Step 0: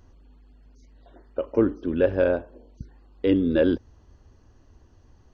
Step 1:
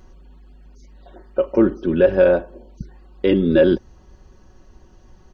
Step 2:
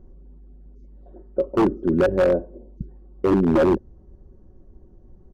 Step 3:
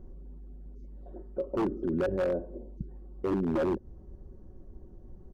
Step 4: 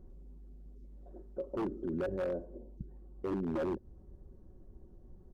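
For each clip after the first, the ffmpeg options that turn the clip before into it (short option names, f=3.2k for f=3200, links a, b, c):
-filter_complex "[0:a]aecho=1:1:5.4:0.59,asplit=2[a][b];[b]alimiter=limit=-14dB:level=0:latency=1:release=37,volume=0.5dB[c];[a][c]amix=inputs=2:normalize=0"
-af "firequalizer=gain_entry='entry(400,0);entry(950,-14);entry(2600,-27)':delay=0.05:min_phase=1,aeval=exprs='0.266*(abs(mod(val(0)/0.266+3,4)-2)-1)':c=same"
-af "alimiter=limit=-22.5dB:level=0:latency=1:release=140"
-af "volume=-6dB" -ar 48000 -c:a libopus -b:a 48k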